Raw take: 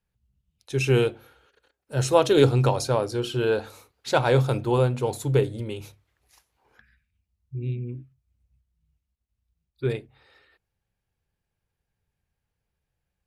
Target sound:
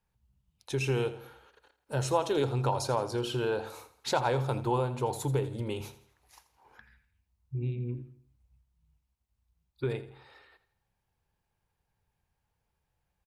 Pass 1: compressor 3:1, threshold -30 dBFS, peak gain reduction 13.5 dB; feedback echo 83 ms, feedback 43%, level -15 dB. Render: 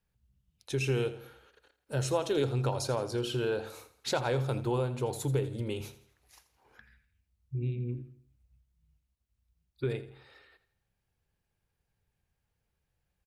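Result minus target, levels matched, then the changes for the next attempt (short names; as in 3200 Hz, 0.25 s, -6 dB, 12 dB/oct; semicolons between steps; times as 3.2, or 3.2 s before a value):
1000 Hz band -5.0 dB
add after compressor: bell 920 Hz +8 dB 0.64 oct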